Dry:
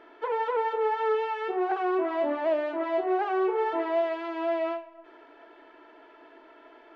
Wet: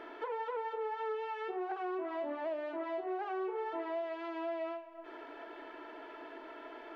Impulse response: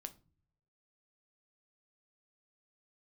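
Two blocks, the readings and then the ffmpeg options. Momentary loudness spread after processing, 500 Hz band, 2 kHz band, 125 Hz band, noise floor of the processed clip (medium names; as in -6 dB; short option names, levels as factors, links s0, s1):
11 LU, -10.5 dB, -9.0 dB, no reading, -50 dBFS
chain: -af "acompressor=threshold=0.00355:ratio=2.5,volume=1.78"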